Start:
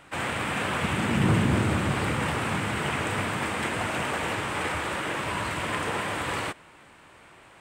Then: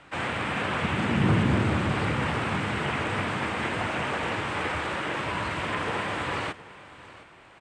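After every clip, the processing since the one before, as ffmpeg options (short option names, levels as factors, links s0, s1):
-filter_complex "[0:a]lowpass=5900,aecho=1:1:715:0.119,acrossover=split=230|3400[s0][s1][s2];[s2]alimiter=level_in=5.01:limit=0.0631:level=0:latency=1:release=34,volume=0.2[s3];[s0][s1][s3]amix=inputs=3:normalize=0"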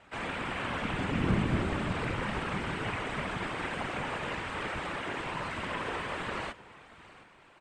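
-af "afftfilt=real='hypot(re,im)*cos(2*PI*random(0))':imag='hypot(re,im)*sin(2*PI*random(1))':win_size=512:overlap=0.75"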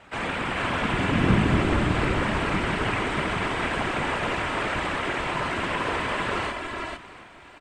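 -af "aecho=1:1:445|448:0.447|0.447,volume=2.24"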